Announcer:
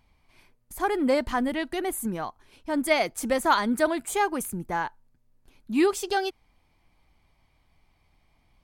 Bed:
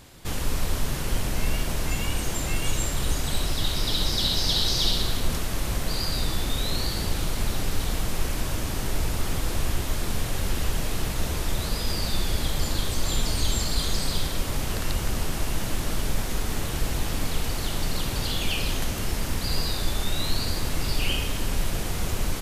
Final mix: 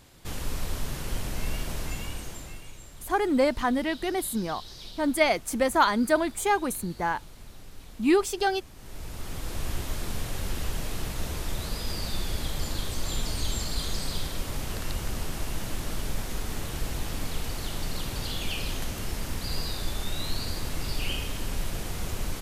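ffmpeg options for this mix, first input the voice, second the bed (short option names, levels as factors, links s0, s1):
-filter_complex "[0:a]adelay=2300,volume=1.06[s0];[1:a]volume=3.16,afade=t=out:st=1.78:d=0.91:silence=0.177828,afade=t=in:st=8.76:d=1:silence=0.16788[s1];[s0][s1]amix=inputs=2:normalize=0"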